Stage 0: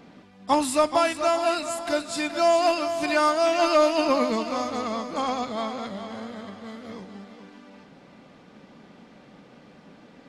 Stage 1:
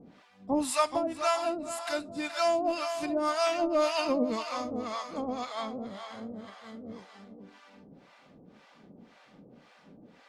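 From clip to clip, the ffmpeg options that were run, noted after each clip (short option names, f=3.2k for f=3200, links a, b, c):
-filter_complex "[0:a]acrossover=split=640[a][b];[a]aeval=exprs='val(0)*(1-1/2+1/2*cos(2*PI*1.9*n/s))':c=same[c];[b]aeval=exprs='val(0)*(1-1/2-1/2*cos(2*PI*1.9*n/s))':c=same[d];[c][d]amix=inputs=2:normalize=0,volume=-1dB"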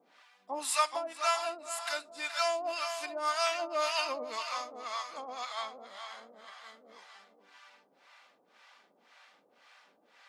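-af "highpass=980,volume=1.5dB"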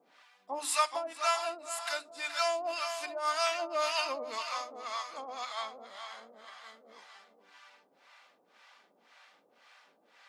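-af "bandreject=f=50:t=h:w=6,bandreject=f=100:t=h:w=6,bandreject=f=150:t=h:w=6,bandreject=f=200:t=h:w=6,bandreject=f=250:t=h:w=6,bandreject=f=300:t=h:w=6"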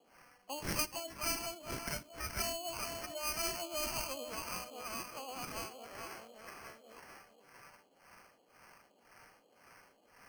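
-filter_complex "[0:a]acrusher=samples=12:mix=1:aa=0.000001,acrossover=split=390|3000[a][b][c];[b]acompressor=threshold=-45dB:ratio=4[d];[a][d][c]amix=inputs=3:normalize=0"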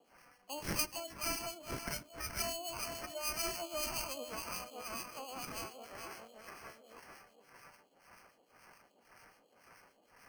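-filter_complex "[0:a]acrossover=split=2200[a][b];[a]aeval=exprs='val(0)*(1-0.5/2+0.5/2*cos(2*PI*6.9*n/s))':c=same[c];[b]aeval=exprs='val(0)*(1-0.5/2-0.5/2*cos(2*PI*6.9*n/s))':c=same[d];[c][d]amix=inputs=2:normalize=0,volume=1.5dB"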